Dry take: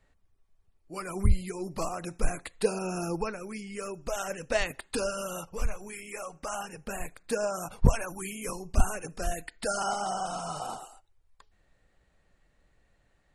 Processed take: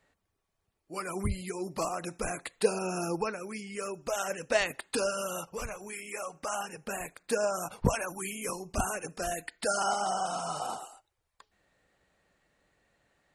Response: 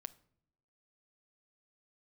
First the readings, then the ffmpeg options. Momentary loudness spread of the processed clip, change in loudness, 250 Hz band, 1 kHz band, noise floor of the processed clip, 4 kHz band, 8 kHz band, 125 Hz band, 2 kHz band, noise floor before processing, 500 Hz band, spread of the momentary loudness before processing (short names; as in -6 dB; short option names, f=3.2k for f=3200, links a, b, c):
10 LU, 0.0 dB, -1.5 dB, +1.0 dB, -81 dBFS, +1.5 dB, +1.5 dB, -6.0 dB, +1.5 dB, -69 dBFS, +1.0 dB, 10 LU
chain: -af "highpass=f=220:p=1,volume=1.5dB"